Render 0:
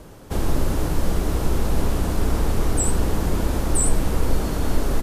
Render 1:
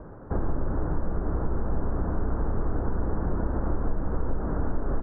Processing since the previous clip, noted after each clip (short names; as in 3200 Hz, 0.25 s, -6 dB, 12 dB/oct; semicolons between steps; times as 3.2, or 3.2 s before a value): steep low-pass 1600 Hz 48 dB/oct; compressor 3:1, threshold -23 dBFS, peak gain reduction 9.5 dB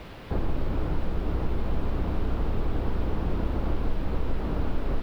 added noise white -37 dBFS; air absorption 400 m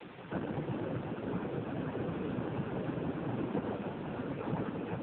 noise vocoder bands 8; AMR-NB 5.9 kbps 8000 Hz